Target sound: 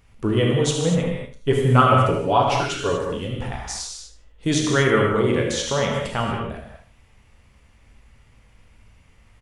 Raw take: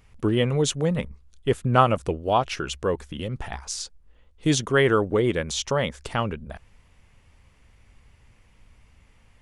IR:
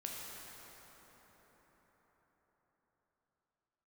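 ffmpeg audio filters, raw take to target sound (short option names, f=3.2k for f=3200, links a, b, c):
-filter_complex "[0:a]asettb=1/sr,asplit=3[a][b][c];[a]atrim=end=0.994[d];[b]atrim=start=0.99:end=2.89,asetpts=PTS-STARTPTS,afade=t=in:d=0.004:c=qsin,afade=t=out:st=1.896:d=0.004:c=qsin,aecho=1:1:7.1:0.69,atrim=end_sample=83790[e];[c]atrim=start=2.886[f];[d][e]acrossfade=d=0.004:c1=hsin:c2=qsin[g];[g][f]acrossfade=d=0.004:c1=qsin:c2=hsin,aecho=1:1:77|154|231:0.251|0.0628|0.0157[h];[1:a]atrim=start_sample=2205,afade=t=out:st=0.3:d=0.01,atrim=end_sample=13671[i];[h][i]afir=irnorm=-1:irlink=0,volume=4.5dB"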